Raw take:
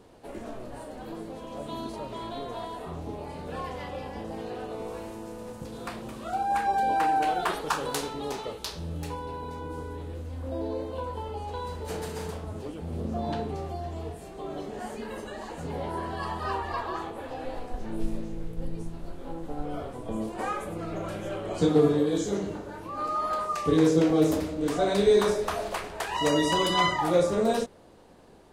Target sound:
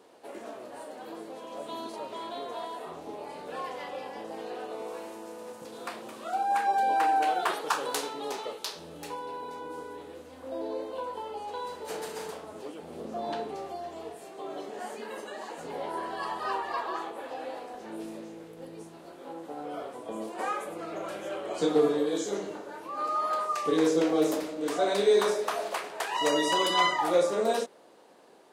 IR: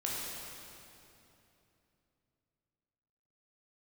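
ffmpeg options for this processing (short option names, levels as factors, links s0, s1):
-af "highpass=360"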